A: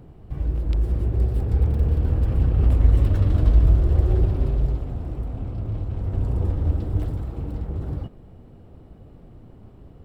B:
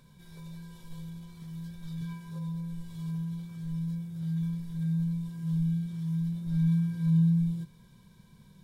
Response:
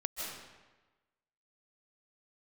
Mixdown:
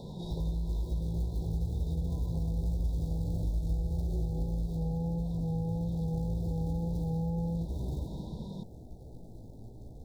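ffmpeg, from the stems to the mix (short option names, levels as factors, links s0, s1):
-filter_complex "[0:a]acrusher=bits=6:mode=log:mix=0:aa=0.000001,flanger=delay=15.5:depth=3.1:speed=1,volume=0.631,asplit=2[s0][s1];[s1]volume=0.631[s2];[1:a]aemphasis=mode=reproduction:type=50fm,asplit=2[s3][s4];[s4]highpass=f=720:p=1,volume=50.1,asoftclip=type=tanh:threshold=0.133[s5];[s3][s5]amix=inputs=2:normalize=0,lowpass=f=1300:p=1,volume=0.501,volume=0.891[s6];[2:a]atrim=start_sample=2205[s7];[s2][s7]afir=irnorm=-1:irlink=0[s8];[s0][s6][s8]amix=inputs=3:normalize=0,asuperstop=centerf=1800:order=20:qfactor=0.68,acompressor=threshold=0.0282:ratio=4"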